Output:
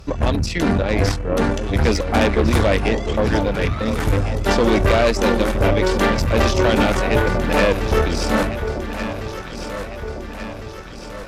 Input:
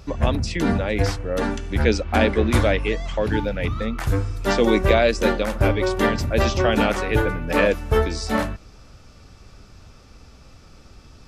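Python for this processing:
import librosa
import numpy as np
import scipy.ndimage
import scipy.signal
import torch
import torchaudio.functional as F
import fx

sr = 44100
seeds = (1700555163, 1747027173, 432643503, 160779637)

y = fx.tube_stage(x, sr, drive_db=18.0, bias=0.7)
y = fx.echo_alternate(y, sr, ms=702, hz=950.0, feedback_pct=74, wet_db=-7.5)
y = y * 10.0 ** (7.0 / 20.0)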